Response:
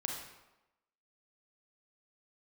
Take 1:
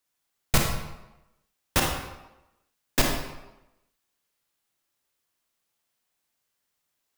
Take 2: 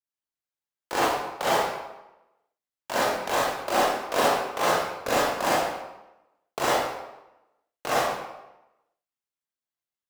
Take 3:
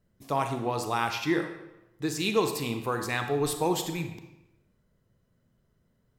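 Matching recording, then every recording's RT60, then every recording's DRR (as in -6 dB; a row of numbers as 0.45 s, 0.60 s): 1; 1.0 s, 1.0 s, 1.0 s; 0.0 dB, -8.5 dB, 6.0 dB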